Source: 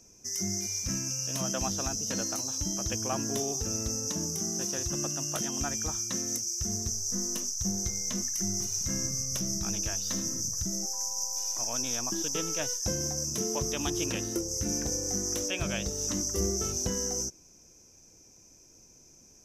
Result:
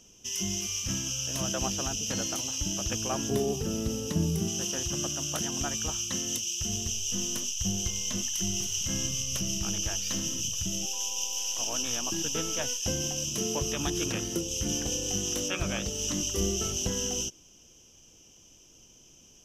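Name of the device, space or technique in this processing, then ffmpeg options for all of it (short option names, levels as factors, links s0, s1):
octave pedal: -filter_complex "[0:a]asplit=3[s0][s1][s2];[s0]afade=t=out:st=3.28:d=0.02[s3];[s1]equalizer=f=160:t=o:w=0.67:g=11,equalizer=f=400:t=o:w=0.67:g=6,equalizer=f=6300:t=o:w=0.67:g=-7,afade=t=in:st=3.28:d=0.02,afade=t=out:st=4.47:d=0.02[s4];[s2]afade=t=in:st=4.47:d=0.02[s5];[s3][s4][s5]amix=inputs=3:normalize=0,asplit=2[s6][s7];[s7]asetrate=22050,aresample=44100,atempo=2,volume=0.398[s8];[s6][s8]amix=inputs=2:normalize=0"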